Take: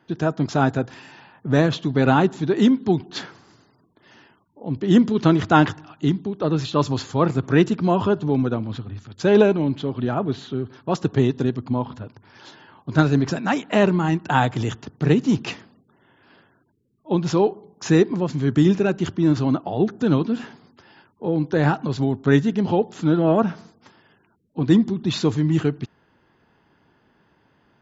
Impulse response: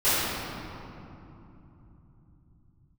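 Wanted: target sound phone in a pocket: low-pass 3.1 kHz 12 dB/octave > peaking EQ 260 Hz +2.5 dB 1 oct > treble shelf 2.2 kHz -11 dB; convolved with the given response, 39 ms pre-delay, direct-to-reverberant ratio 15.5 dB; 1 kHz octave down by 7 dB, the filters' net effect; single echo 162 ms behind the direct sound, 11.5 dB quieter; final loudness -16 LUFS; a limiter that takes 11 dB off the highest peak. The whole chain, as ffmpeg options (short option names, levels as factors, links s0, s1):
-filter_complex "[0:a]equalizer=f=1000:t=o:g=-7.5,alimiter=limit=0.2:level=0:latency=1,aecho=1:1:162:0.266,asplit=2[s0][s1];[1:a]atrim=start_sample=2205,adelay=39[s2];[s1][s2]afir=irnorm=-1:irlink=0,volume=0.0224[s3];[s0][s3]amix=inputs=2:normalize=0,lowpass=3100,equalizer=f=260:t=o:w=1:g=2.5,highshelf=f=2200:g=-11,volume=2.37"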